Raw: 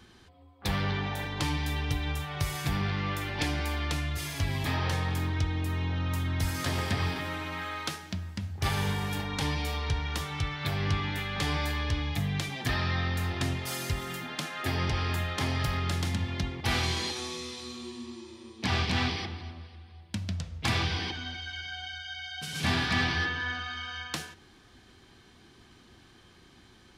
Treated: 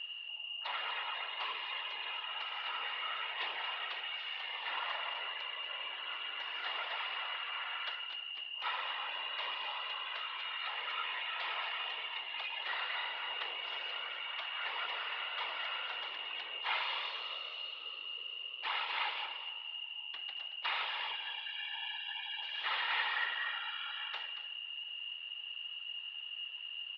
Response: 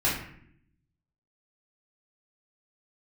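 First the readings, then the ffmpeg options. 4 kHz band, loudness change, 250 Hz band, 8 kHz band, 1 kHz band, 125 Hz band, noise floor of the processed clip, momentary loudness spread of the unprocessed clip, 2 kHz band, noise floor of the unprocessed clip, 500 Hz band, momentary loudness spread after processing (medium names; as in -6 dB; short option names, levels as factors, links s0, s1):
-0.5 dB, -6.5 dB, under -35 dB, under -35 dB, -4.5 dB, under -40 dB, -46 dBFS, 9 LU, -3.5 dB, -57 dBFS, -13.5 dB, 6 LU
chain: -filter_complex "[0:a]aeval=exprs='val(0)+0.0141*sin(2*PI*2700*n/s)':c=same,aecho=1:1:229:0.266,asplit=2[s0][s1];[1:a]atrim=start_sample=2205[s2];[s1][s2]afir=irnorm=-1:irlink=0,volume=0.1[s3];[s0][s3]amix=inputs=2:normalize=0,highpass=f=540:t=q:w=0.5412,highpass=f=540:t=q:w=1.307,lowpass=f=3400:t=q:w=0.5176,lowpass=f=3400:t=q:w=0.7071,lowpass=f=3400:t=q:w=1.932,afreqshift=140,afftfilt=real='hypot(re,im)*cos(2*PI*random(0))':imag='hypot(re,im)*sin(2*PI*random(1))':win_size=512:overlap=0.75"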